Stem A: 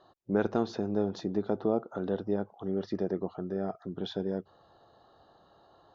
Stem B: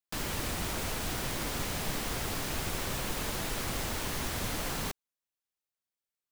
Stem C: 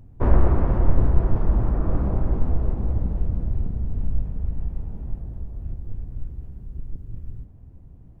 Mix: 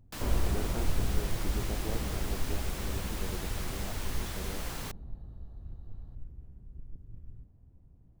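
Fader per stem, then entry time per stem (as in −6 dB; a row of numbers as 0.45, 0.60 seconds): −13.0, −5.5, −12.5 decibels; 0.20, 0.00, 0.00 seconds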